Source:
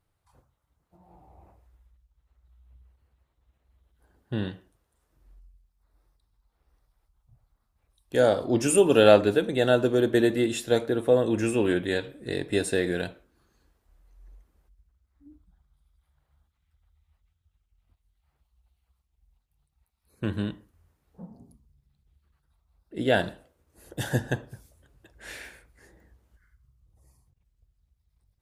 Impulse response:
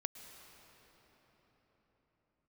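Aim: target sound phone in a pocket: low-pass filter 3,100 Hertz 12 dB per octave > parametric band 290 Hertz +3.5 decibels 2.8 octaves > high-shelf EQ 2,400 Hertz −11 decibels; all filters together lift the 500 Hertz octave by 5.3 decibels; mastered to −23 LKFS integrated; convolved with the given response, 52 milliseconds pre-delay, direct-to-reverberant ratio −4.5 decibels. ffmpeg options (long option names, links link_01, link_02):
-filter_complex "[0:a]equalizer=frequency=500:width_type=o:gain=3.5,asplit=2[link_01][link_02];[1:a]atrim=start_sample=2205,adelay=52[link_03];[link_02][link_03]afir=irnorm=-1:irlink=0,volume=6dB[link_04];[link_01][link_04]amix=inputs=2:normalize=0,lowpass=3100,equalizer=frequency=290:width_type=o:width=2.8:gain=3.5,highshelf=frequency=2400:gain=-11,volume=-8.5dB"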